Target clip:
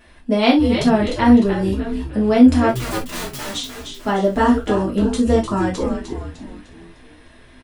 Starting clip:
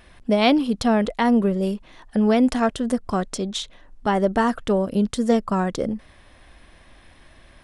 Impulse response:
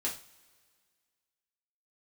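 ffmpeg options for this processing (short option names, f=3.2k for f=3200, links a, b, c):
-filter_complex "[0:a]asettb=1/sr,asplit=3[a][b][c];[a]atrim=end=2.694[d];[b]atrim=start=2.69:end=3.55,asetpts=PTS-STARTPTS,afade=t=in:d=0.004:c=qsin,afade=t=out:st=0.856:d=0.004:c=qsin,aeval=exprs='(mod(20*val(0)+1,2)-1)/20':c=same[e];[c]atrim=start=3.546[f];[d][e]acrossfade=d=0.004:c1=hsin:c2=qsin[g];[g][f]acrossfade=d=0.004:c1=qsin:c2=hsin,asplit=6[h][i][j][k][l][m];[i]adelay=302,afreqshift=-130,volume=-7dB[n];[j]adelay=604,afreqshift=-260,volume=-14.1dB[o];[k]adelay=906,afreqshift=-390,volume=-21.3dB[p];[l]adelay=1208,afreqshift=-520,volume=-28.4dB[q];[m]adelay=1510,afreqshift=-650,volume=-35.5dB[r];[h][n][o][p][q][r]amix=inputs=6:normalize=0[s];[1:a]atrim=start_sample=2205,atrim=end_sample=3528[t];[s][t]afir=irnorm=-1:irlink=0,volume=-1dB"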